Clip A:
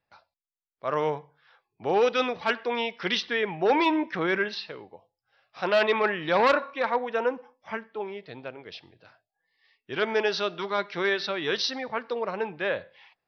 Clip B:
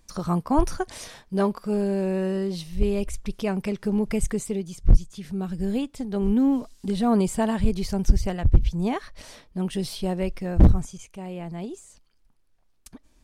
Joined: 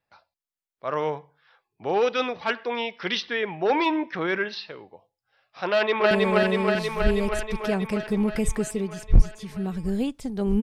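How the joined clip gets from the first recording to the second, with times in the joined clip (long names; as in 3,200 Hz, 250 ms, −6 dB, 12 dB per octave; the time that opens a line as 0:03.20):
clip A
0:05.68–0:06.11: delay throw 320 ms, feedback 75%, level −0.5 dB
0:06.11: continue with clip B from 0:01.86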